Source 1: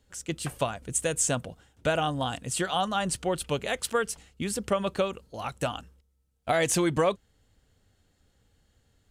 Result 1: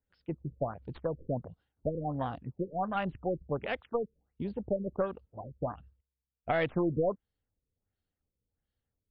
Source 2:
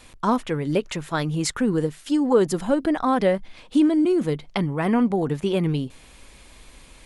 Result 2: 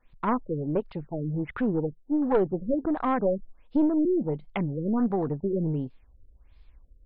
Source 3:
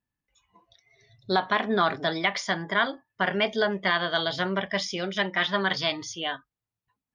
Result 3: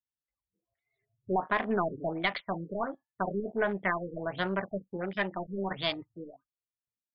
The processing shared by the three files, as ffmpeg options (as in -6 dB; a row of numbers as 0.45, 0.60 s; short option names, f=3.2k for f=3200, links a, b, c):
-af "afwtdn=0.0224,aeval=exprs='0.501*(cos(1*acos(clip(val(0)/0.501,-1,1)))-cos(1*PI/2))+0.2*(cos(2*acos(clip(val(0)/0.501,-1,1)))-cos(2*PI/2))+0.0398*(cos(5*acos(clip(val(0)/0.501,-1,1)))-cos(5*PI/2))':c=same,afftfilt=real='re*lt(b*sr/1024,530*pow(5400/530,0.5+0.5*sin(2*PI*1.4*pts/sr)))':imag='im*lt(b*sr/1024,530*pow(5400/530,0.5+0.5*sin(2*PI*1.4*pts/sr)))':win_size=1024:overlap=0.75,volume=-6.5dB"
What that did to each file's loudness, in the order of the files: -6.0, -5.0, -6.5 LU